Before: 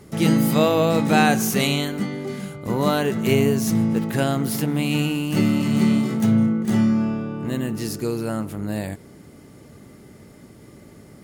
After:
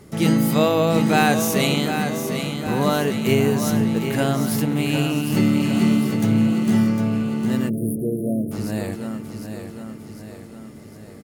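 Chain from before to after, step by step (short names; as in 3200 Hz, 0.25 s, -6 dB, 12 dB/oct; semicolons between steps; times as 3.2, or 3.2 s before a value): feedback echo 0.755 s, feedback 54%, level -8 dB; spectral delete 7.69–8.52, 710–8900 Hz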